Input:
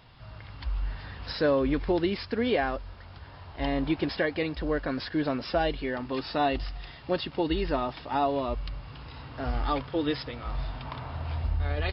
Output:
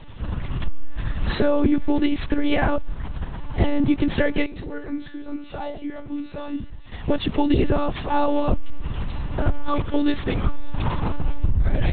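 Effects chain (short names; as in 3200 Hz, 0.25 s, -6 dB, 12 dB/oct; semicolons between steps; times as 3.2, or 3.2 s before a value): low shelf 260 Hz +11.5 dB; compressor 6:1, threshold -23 dBFS, peak gain reduction 10 dB; 4.45–6.93 resonator 90 Hz, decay 0.38 s, harmonics odd, mix 90%; monotone LPC vocoder at 8 kHz 290 Hz; gain +8.5 dB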